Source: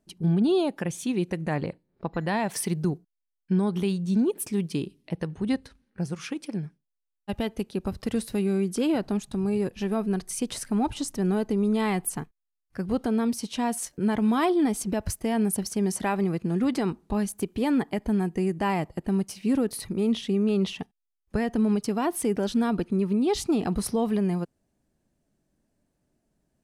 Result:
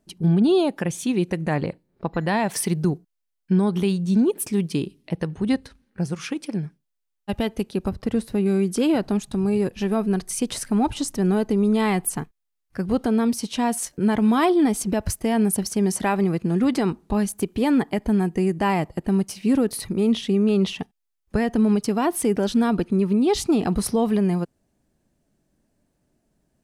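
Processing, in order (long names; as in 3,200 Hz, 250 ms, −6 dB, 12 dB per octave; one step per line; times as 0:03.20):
0:07.89–0:08.46: high-shelf EQ 2,300 Hz −9.5 dB
level +4.5 dB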